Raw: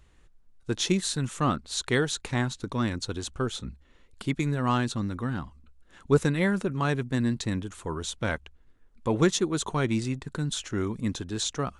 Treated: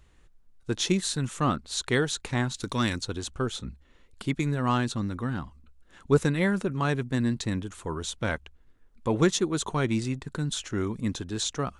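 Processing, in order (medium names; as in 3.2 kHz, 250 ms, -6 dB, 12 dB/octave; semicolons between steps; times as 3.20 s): 2.54–3.01 s: treble shelf 2.1 kHz +12 dB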